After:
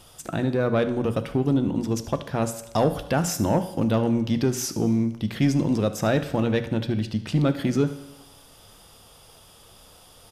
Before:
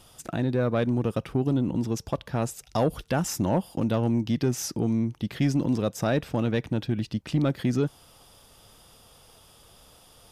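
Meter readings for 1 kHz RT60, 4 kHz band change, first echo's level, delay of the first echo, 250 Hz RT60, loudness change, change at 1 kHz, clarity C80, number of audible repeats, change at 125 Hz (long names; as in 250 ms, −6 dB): 1.0 s, +3.5 dB, −16.5 dB, 74 ms, 1.0 s, +2.5 dB, +3.5 dB, 15.0 dB, 1, +1.5 dB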